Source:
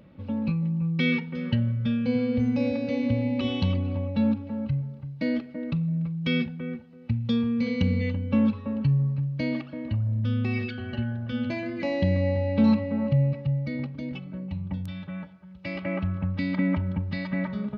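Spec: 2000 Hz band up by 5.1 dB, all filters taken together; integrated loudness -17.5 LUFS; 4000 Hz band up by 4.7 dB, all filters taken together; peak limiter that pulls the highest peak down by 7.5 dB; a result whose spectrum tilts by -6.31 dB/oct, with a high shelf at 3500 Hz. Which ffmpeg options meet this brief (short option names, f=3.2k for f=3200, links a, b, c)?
-af "equalizer=f=2k:t=o:g=5.5,highshelf=f=3.5k:g=-6.5,equalizer=f=4k:t=o:g=8,volume=10.5dB,alimiter=limit=-7dB:level=0:latency=1"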